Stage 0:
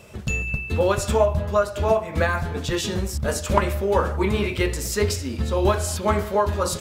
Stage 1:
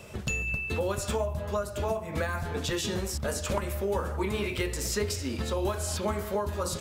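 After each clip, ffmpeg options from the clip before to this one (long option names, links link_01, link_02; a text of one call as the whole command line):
ffmpeg -i in.wav -filter_complex "[0:a]acrossover=split=320|7000[link_01][link_02][link_03];[link_01]acompressor=threshold=-33dB:ratio=4[link_04];[link_02]acompressor=threshold=-31dB:ratio=4[link_05];[link_03]acompressor=threshold=-39dB:ratio=4[link_06];[link_04][link_05][link_06]amix=inputs=3:normalize=0" out.wav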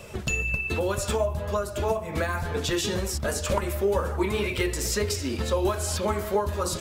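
ffmpeg -i in.wav -af "flanger=delay=1.6:depth=1.6:regen=62:speed=2:shape=triangular,volume=8dB" out.wav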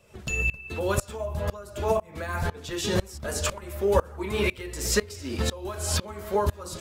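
ffmpeg -i in.wav -af "aeval=exprs='val(0)*pow(10,-24*if(lt(mod(-2*n/s,1),2*abs(-2)/1000),1-mod(-2*n/s,1)/(2*abs(-2)/1000),(mod(-2*n/s,1)-2*abs(-2)/1000)/(1-2*abs(-2)/1000))/20)':channel_layout=same,volume=6dB" out.wav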